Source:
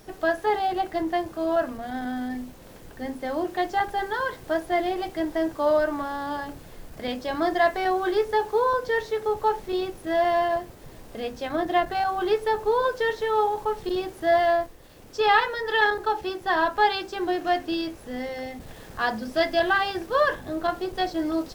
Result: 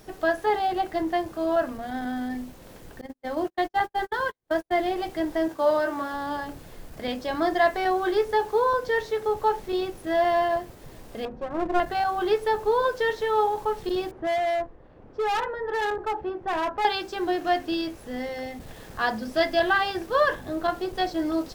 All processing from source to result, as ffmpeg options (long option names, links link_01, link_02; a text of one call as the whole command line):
ffmpeg -i in.wav -filter_complex "[0:a]asettb=1/sr,asplit=3[link_01][link_02][link_03];[link_01]atrim=end=3.014[link_04];[link_02]atrim=start=3.01:end=4.81,asetpts=PTS-STARTPTS,afade=type=in:duration=0.004:curve=qsin,afade=type=out:start_time=1.796:duration=0.004:curve=qsin,agate=range=-49dB:threshold=-30dB:ratio=16:release=100:detection=peak,acompressor=mode=upward:threshold=-45dB:ratio=2.5:attack=3.2:release=140:knee=2.83:detection=peak[link_05];[link_03]atrim=start=4.806[link_06];[link_04][link_05]acrossfade=duration=0.004:curve1=hsin:curve2=qsin[link_07];[link_07][link_06]acrossfade=duration=0.004:curve1=qsin:curve2=hsin,asettb=1/sr,asplit=3[link_08][link_09][link_10];[link_08]atrim=end=5.484[link_11];[link_09]atrim=start=5.48:end=6.14,asetpts=PTS-STARTPTS,afade=type=in:duration=0.004:curve=qsin,afade=type=out:start_time=0.656:duration=0.004:curve=qsin,highpass=frequency=170:poles=1,agate=range=-33dB:threshold=-40dB:ratio=3:release=100:detection=peak,asplit=2[link_12][link_13];[link_13]adelay=22,volume=-7dB[link_14];[link_12][link_14]amix=inputs=2:normalize=0,atrim=end_sample=29106[link_15];[link_10]atrim=start=6.136[link_16];[link_11][link_15]acrossfade=duration=0.004:curve1=hsin:curve2=qsin[link_17];[link_17][link_16]acrossfade=duration=0.004:curve1=qsin:curve2=hsin,asettb=1/sr,asplit=3[link_18][link_19][link_20];[link_18]atrim=end=11.254[link_21];[link_19]atrim=start=11.25:end=11.8,asetpts=PTS-STARTPTS,afade=type=in:duration=0.004:curve=qsin,afade=type=out:start_time=0.546:duration=0.004:curve=qsin,lowpass=1000,aecho=1:1:5.5:0.48,atrim=end_sample=24255,aeval=exprs='clip(val(0),-1,0.0211)':channel_layout=same[link_22];[link_20]atrim=start=11.796[link_23];[link_21][link_22]acrossfade=duration=0.004:curve1=hsin:curve2=qsin[link_24];[link_24][link_23]acrossfade=duration=0.004:curve1=qsin:curve2=hsin,asettb=1/sr,asplit=3[link_25][link_26][link_27];[link_25]atrim=end=14.114[link_28];[link_26]atrim=start=14.11:end=16.85,asetpts=PTS-STARTPTS,afade=type=in:duration=0.004:curve=qsin,afade=type=out:start_time=2.736:duration=0.004:curve=qsin,lowpass=1300,volume=23dB,asoftclip=hard,volume=-23dB[link_29];[link_27]atrim=start=16.846[link_30];[link_28][link_29]acrossfade=duration=0.004:curve1=hsin:curve2=qsin[link_31];[link_31][link_30]acrossfade=duration=0.004:curve1=qsin:curve2=hsin" out.wav